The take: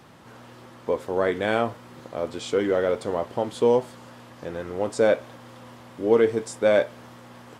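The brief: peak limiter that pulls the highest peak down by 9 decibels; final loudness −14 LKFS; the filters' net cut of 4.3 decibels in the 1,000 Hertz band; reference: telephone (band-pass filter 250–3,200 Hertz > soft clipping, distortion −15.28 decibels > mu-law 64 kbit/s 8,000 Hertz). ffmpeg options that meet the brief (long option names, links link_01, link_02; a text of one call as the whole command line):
ffmpeg -i in.wav -af "equalizer=frequency=1000:width_type=o:gain=-6,alimiter=limit=-16.5dB:level=0:latency=1,highpass=250,lowpass=3200,asoftclip=threshold=-22dB,volume=18dB" -ar 8000 -c:a pcm_mulaw out.wav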